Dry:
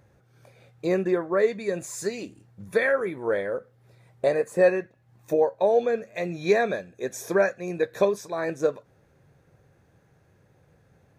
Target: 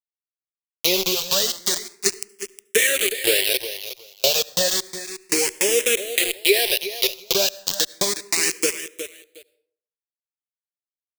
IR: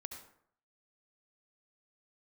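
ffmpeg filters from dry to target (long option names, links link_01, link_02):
-filter_complex "[0:a]aeval=exprs='val(0)*gte(abs(val(0)),0.0562)':channel_layout=same,equalizer=frequency=89:width=0.71:gain=-3,asplit=2[link_01][link_02];[1:a]atrim=start_sample=2205[link_03];[link_02][link_03]afir=irnorm=-1:irlink=0,volume=-13.5dB[link_04];[link_01][link_04]amix=inputs=2:normalize=0,aexciter=amount=6.9:drive=7.7:freq=2100,equalizer=frequency=380:width=4.4:gain=11,acompressor=threshold=-16dB:ratio=6,aecho=1:1:362|724:0.251|0.0452,asplit=2[link_05][link_06];[link_06]afreqshift=0.32[link_07];[link_05][link_07]amix=inputs=2:normalize=1,volume=3.5dB"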